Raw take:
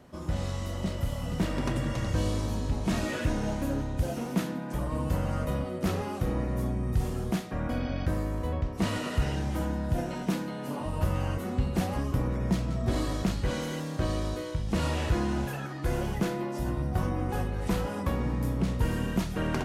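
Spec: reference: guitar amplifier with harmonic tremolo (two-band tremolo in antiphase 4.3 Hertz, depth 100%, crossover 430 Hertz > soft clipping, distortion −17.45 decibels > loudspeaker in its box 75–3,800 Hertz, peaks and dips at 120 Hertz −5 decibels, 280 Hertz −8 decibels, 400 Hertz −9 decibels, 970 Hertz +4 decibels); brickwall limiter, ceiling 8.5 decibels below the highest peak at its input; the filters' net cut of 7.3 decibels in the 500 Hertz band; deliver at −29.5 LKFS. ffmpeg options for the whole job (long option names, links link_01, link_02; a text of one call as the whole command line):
ffmpeg -i in.wav -filter_complex "[0:a]equalizer=frequency=500:width_type=o:gain=-6,alimiter=level_in=1dB:limit=-24dB:level=0:latency=1,volume=-1dB,acrossover=split=430[link_01][link_02];[link_01]aeval=exprs='val(0)*(1-1/2+1/2*cos(2*PI*4.3*n/s))':channel_layout=same[link_03];[link_02]aeval=exprs='val(0)*(1-1/2-1/2*cos(2*PI*4.3*n/s))':channel_layout=same[link_04];[link_03][link_04]amix=inputs=2:normalize=0,asoftclip=threshold=-29.5dB,highpass=75,equalizer=frequency=120:width_type=q:width=4:gain=-5,equalizer=frequency=280:width_type=q:width=4:gain=-8,equalizer=frequency=400:width_type=q:width=4:gain=-9,equalizer=frequency=970:width_type=q:width=4:gain=4,lowpass=frequency=3800:width=0.5412,lowpass=frequency=3800:width=1.3066,volume=14dB" out.wav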